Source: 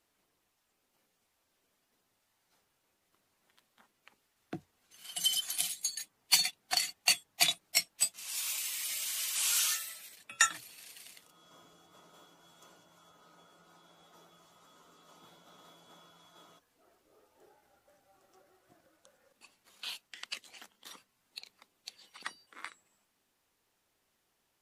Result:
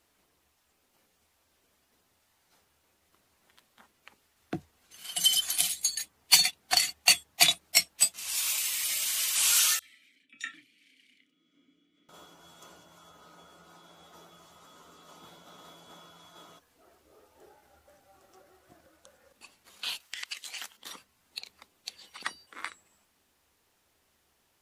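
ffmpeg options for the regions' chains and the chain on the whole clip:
-filter_complex "[0:a]asettb=1/sr,asplit=3[a][b][c];[a]atrim=end=9.794[d];[b]atrim=start=9.79:end=12.09,asetpts=PTS-STARTPTS,afade=t=in:d=0.004:c=qsin,afade=t=out:st=2.296:d=0.004:c=qsin,asplit=3[e][f][g];[e]bandpass=f=270:t=q:w=8,volume=0dB[h];[f]bandpass=f=2.29k:t=q:w=8,volume=-6dB[i];[g]bandpass=f=3.01k:t=q:w=8,volume=-9dB[j];[h][i][j]amix=inputs=3:normalize=0,asplit=2[k][l];[l]adelay=31,volume=-12dB[m];[k][m]amix=inputs=2:normalize=0,atrim=end_sample=101430,acrossover=split=3600[n][o];[n]adelay=30[p];[p][o]amix=inputs=2:normalize=0,atrim=end_sample=101430[q];[c]atrim=start=12.086[r];[d][q]acrossfade=d=0.004:c1=hsin:c2=qsin[s];[s][r]acrossfade=d=0.004:c1=qsin:c2=hsin,asettb=1/sr,asplit=3[t][u][v];[t]atrim=end=20.004[w];[u]atrim=start=20:end=20.77,asetpts=PTS-STARTPTS,afade=t=in:d=0.004:c=qsin,afade=t=out:st=0.766:d=0.004:c=qsin,tiltshelf=f=680:g=-8.5,acompressor=threshold=-39dB:ratio=12:attack=3.2:release=140:knee=1:detection=peak[x];[v]atrim=start=20.766[y];[w][x]acrossfade=d=0.004:c1=hsin:c2=qsin[z];[z][y]acrossfade=d=0.004:c1=qsin:c2=hsin,acontrast=57,equalizer=f=75:w=6.9:g=15"

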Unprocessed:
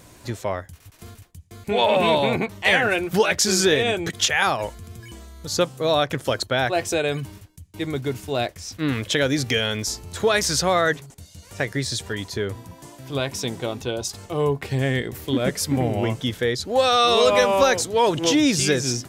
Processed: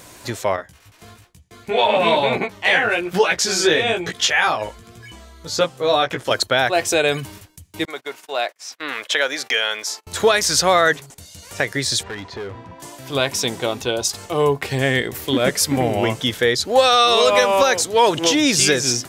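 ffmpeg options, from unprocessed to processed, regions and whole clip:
-filter_complex "[0:a]asettb=1/sr,asplit=3[a][b][c];[a]atrim=end=0.564[d];[b]atrim=start=0.56:end=6.31,asetpts=PTS-STARTPTS,afade=t=in:d=0.004:c=qsin,afade=t=out:st=5.746:d=0.004:c=qsin,highshelf=f=7.1k:g=-10,flanger=delay=16:depth=2.5:speed=1.1[e];[c]atrim=start=6.306[f];[d][e]acrossfade=d=0.004:c1=hsin:c2=qsin[g];[g][f]acrossfade=d=0.004:c1=qsin:c2=hsin,asettb=1/sr,asplit=3[h][i][j];[h]atrim=end=7.854[k];[i]atrim=start=7.85:end=10.07,asetpts=PTS-STARTPTS,afade=t=in:d=0.004:c=qsin,afade=t=out:st=2.216:d=0.004:c=qsin,highpass=690,agate=range=-26dB:threshold=-43dB:ratio=16:release=100:detection=peak,highshelf=f=3.2k:g=-9[l];[j]atrim=start=10.066[m];[k][l]acrossfade=d=0.004:c1=hsin:c2=qsin[n];[n][m]acrossfade=d=0.004:c1=qsin:c2=hsin,asettb=1/sr,asplit=3[o][p][q];[o]atrim=end=12.034[r];[p]atrim=start=12.03:end=12.8,asetpts=PTS-STARTPTS,afade=t=in:d=0.004:c=qsin,afade=t=out:st=0.766:d=0.004:c=qsin,lowpass=2.4k,acompressor=threshold=-27dB:ratio=4:attack=3.2:release=140:knee=1:detection=peak,asoftclip=type=hard:threshold=-29.5dB[s];[q]atrim=start=12.796[t];[r][s]acrossfade=d=0.004:c1=hsin:c2=qsin[u];[u][t]acrossfade=d=0.004:c1=qsin:c2=hsin,lowshelf=f=310:g=-10,alimiter=limit=-12dB:level=0:latency=1:release=455,volume=8dB"

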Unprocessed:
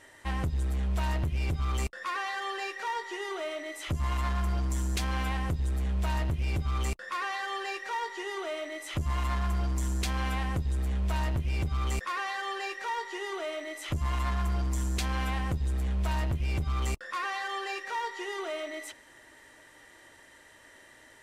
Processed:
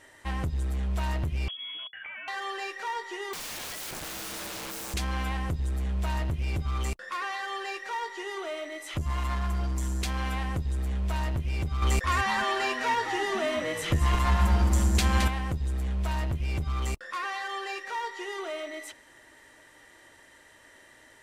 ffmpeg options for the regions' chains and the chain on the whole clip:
-filter_complex "[0:a]asettb=1/sr,asplit=3[a][b][c];[a]atrim=end=1.484[d];[b]atrim=start=1.48:end=2.28,asetpts=PTS-STARTPTS,afade=t=in:d=0.004:c=qsin,afade=t=out:st=0.796:d=0.004:c=qsin,acompressor=threshold=-37dB:ratio=10:attack=3.2:release=140:knee=1:detection=peak,lowpass=f=2.9k:t=q:w=0.5098,lowpass=f=2.9k:t=q:w=0.6013,lowpass=f=2.9k:t=q:w=0.9,lowpass=f=2.9k:t=q:w=2.563,afreqshift=-3400[e];[c]atrim=start=2.276[f];[d][e]acrossfade=d=0.004:c1=hsin:c2=qsin[g];[g][f]acrossfade=d=0.004:c1=qsin:c2=hsin,asettb=1/sr,asplit=3[h][i][j];[h]atrim=end=3.334[k];[i]atrim=start=3.33:end=4.94,asetpts=PTS-STARTPTS,afade=t=in:d=0.004:c=qsin,afade=t=out:st=1.606:d=0.004:c=qsin,bandreject=f=60:t=h:w=6,bandreject=f=120:t=h:w=6,bandreject=f=180:t=h:w=6,bandreject=f=240:t=h:w=6,bandreject=f=300:t=h:w=6,bandreject=f=360:t=h:w=6,acontrast=52,aeval=exprs='(mod(44.7*val(0)+1,2)-1)/44.7':c=same[l];[j]atrim=start=4.936[m];[k][l]acrossfade=d=0.004:c1=hsin:c2=qsin[n];[n][m]acrossfade=d=0.004:c1=qsin:c2=hsin,asettb=1/sr,asplit=3[o][p][q];[o]atrim=end=11.824[r];[p]atrim=start=11.82:end=15.28,asetpts=PTS-STARTPTS,afade=t=in:d=0.004:c=qsin,afade=t=out:st=3.456:d=0.004:c=qsin,acontrast=48,asplit=5[s][t][u][v][w];[t]adelay=217,afreqshift=-140,volume=-7dB[x];[u]adelay=434,afreqshift=-280,volume=-16.9dB[y];[v]adelay=651,afreqshift=-420,volume=-26.8dB[z];[w]adelay=868,afreqshift=-560,volume=-36.7dB[aa];[s][x][y][z][aa]amix=inputs=5:normalize=0,atrim=end_sample=152586[ab];[q]atrim=start=15.276[ac];[r][ab]acrossfade=d=0.004:c1=hsin:c2=qsin[ad];[ad][ac]acrossfade=d=0.004:c1=qsin:c2=hsin"

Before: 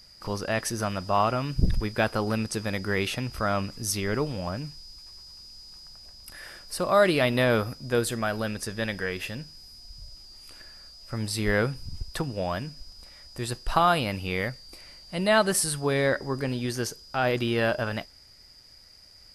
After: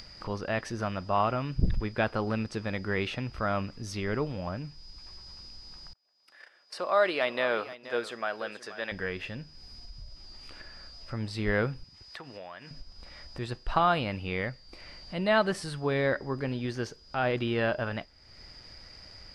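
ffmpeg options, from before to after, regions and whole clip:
-filter_complex "[0:a]asettb=1/sr,asplit=3[a][b][c];[a]atrim=end=5.934[d];[b]atrim=start=5.93:end=8.92,asetpts=PTS-STARTPTS,afade=t=in:d=0.004:c=qsin,afade=t=out:st=2.986:d=0.004:c=qsin,agate=range=-29dB:threshold=-40dB:ratio=16:release=100:detection=peak,highpass=460,aecho=1:1:479:0.168,atrim=end_sample=131859[e];[c]atrim=start=8.916[f];[d][e]acrossfade=d=0.004:c1=hsin:c2=qsin[g];[g][f]acrossfade=d=0.004:c1=qsin:c2=hsin,asettb=1/sr,asplit=3[h][i][j];[h]atrim=end=11.844[k];[i]atrim=start=11.84:end=12.71,asetpts=PTS-STARTPTS,afade=t=in:d=0.004:c=qsin,afade=t=out:st=0.866:d=0.004:c=qsin,highpass=f=970:p=1,equalizer=f=1.9k:t=o:w=0.35:g=5.5,acompressor=threshold=-41dB:ratio=3:attack=3.2:release=140:knee=1:detection=peak[l];[j]atrim=start=12.706[m];[k][l]acrossfade=d=0.004:c1=hsin:c2=qsin[n];[n][m]acrossfade=d=0.004:c1=qsin:c2=hsin,lowpass=3.7k,acompressor=mode=upward:threshold=-34dB:ratio=2.5,volume=-3dB"

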